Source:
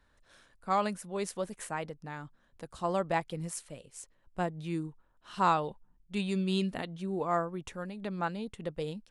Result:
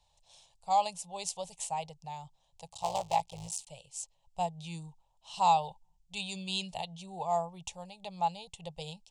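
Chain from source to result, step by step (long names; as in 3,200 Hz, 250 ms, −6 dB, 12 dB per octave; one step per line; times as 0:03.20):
0:02.66–0:03.67: sub-harmonics by changed cycles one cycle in 3, muted
drawn EQ curve 170 Hz 0 dB, 250 Hz −26 dB, 840 Hz +12 dB, 1,500 Hz −23 dB, 2,700 Hz +7 dB, 7,500 Hz +13 dB, 12,000 Hz −1 dB
level −4 dB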